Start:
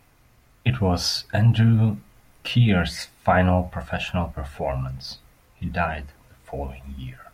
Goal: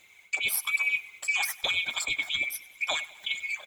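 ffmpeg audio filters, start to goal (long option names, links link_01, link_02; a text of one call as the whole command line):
ffmpeg -i in.wav -af "afftfilt=real='real(if(lt(b,960),b+48*(1-2*mod(floor(b/48),2)),b),0)':imag='imag(if(lt(b,960),b+48*(1-2*mod(floor(b/48),2)),b),0)':win_size=2048:overlap=0.75,lowshelf=frequency=160:gain=-9.5,areverse,acompressor=threshold=-26dB:ratio=8,areverse,aphaser=in_gain=1:out_gain=1:delay=2.8:decay=0.43:speed=1.2:type=triangular,aecho=1:1:196|392|588|784|980:0.0891|0.0526|0.031|0.0183|0.0108,asetrate=88200,aresample=44100" out.wav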